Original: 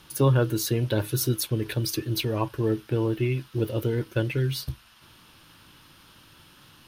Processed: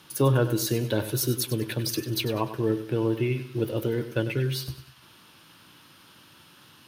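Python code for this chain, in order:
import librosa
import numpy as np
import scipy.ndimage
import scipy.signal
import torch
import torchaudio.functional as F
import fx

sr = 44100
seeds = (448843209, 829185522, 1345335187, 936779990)

p1 = scipy.signal.sosfilt(scipy.signal.butter(2, 120.0, 'highpass', fs=sr, output='sos'), x)
y = p1 + fx.echo_feedback(p1, sr, ms=98, feedback_pct=39, wet_db=-12, dry=0)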